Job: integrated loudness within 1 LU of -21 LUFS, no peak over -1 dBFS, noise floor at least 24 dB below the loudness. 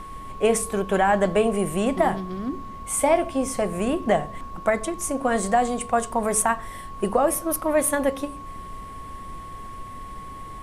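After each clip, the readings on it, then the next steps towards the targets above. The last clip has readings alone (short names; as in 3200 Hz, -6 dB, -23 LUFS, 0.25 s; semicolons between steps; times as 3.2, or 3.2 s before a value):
steady tone 1100 Hz; tone level -37 dBFS; noise floor -38 dBFS; noise floor target -48 dBFS; loudness -23.5 LUFS; peak -8.0 dBFS; loudness target -21.0 LUFS
-> notch 1100 Hz, Q 30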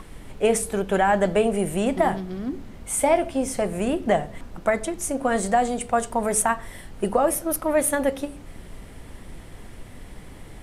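steady tone none; noise floor -42 dBFS; noise floor target -48 dBFS
-> noise print and reduce 6 dB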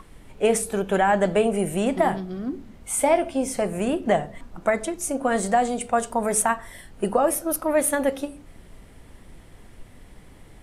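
noise floor -48 dBFS; loudness -23.5 LUFS; peak -8.5 dBFS; loudness target -21.0 LUFS
-> gain +2.5 dB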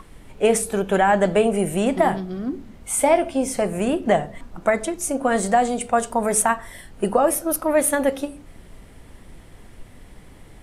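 loudness -21.0 LUFS; peak -6.0 dBFS; noise floor -45 dBFS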